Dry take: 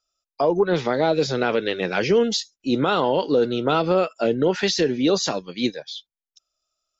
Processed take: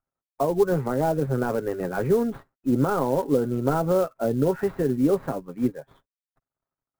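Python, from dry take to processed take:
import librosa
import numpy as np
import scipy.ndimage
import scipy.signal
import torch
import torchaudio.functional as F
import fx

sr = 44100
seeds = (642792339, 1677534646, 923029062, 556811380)

y = fx.cvsd(x, sr, bps=64000)
y = scipy.signal.sosfilt(scipy.signal.butter(4, 1500.0, 'lowpass', fs=sr, output='sos'), y)
y = fx.low_shelf(y, sr, hz=150.0, db=11.5)
y = y + 0.42 * np.pad(y, (int(7.4 * sr / 1000.0), 0))[:len(y)]
y = fx.clock_jitter(y, sr, seeds[0], jitter_ms=0.02)
y = y * 10.0 ** (-4.5 / 20.0)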